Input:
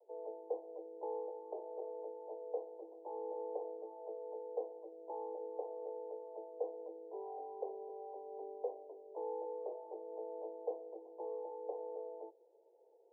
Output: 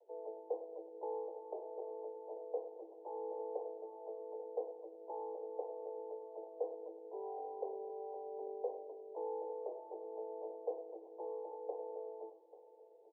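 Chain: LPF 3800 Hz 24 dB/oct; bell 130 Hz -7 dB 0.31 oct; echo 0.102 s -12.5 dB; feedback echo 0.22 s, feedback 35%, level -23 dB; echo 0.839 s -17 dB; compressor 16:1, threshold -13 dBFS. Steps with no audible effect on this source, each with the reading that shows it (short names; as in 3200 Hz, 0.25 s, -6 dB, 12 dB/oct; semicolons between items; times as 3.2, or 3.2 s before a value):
LPF 3800 Hz: input band ends at 1000 Hz; bell 130 Hz: input band starts at 320 Hz; compressor, threshold -13 dBFS: input peak -26.5 dBFS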